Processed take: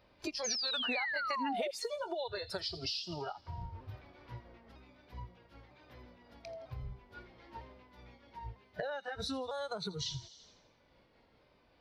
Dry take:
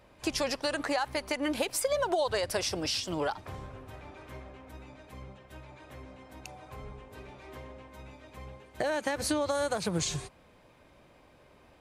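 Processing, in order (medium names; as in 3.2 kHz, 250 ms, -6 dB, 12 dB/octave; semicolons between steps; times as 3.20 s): sawtooth pitch modulation -2.5 st, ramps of 951 ms; spectral noise reduction 16 dB; resonant high shelf 6.1 kHz -9 dB, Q 3; on a send: feedback echo behind a high-pass 83 ms, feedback 49%, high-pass 4 kHz, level -13 dB; on the sum: compression 4:1, threshold -48 dBFS, peak gain reduction 19 dB; painted sound fall, 0.44–1.71 s, 540–6700 Hz -45 dBFS; trim +8.5 dB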